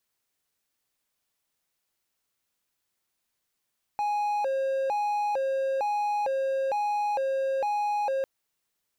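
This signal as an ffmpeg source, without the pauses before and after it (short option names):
-f lavfi -i "aevalsrc='0.075*(1-4*abs(mod((683.5*t+146.5/1.1*(0.5-abs(mod(1.1*t,1)-0.5)))+0.25,1)-0.5))':d=4.25:s=44100"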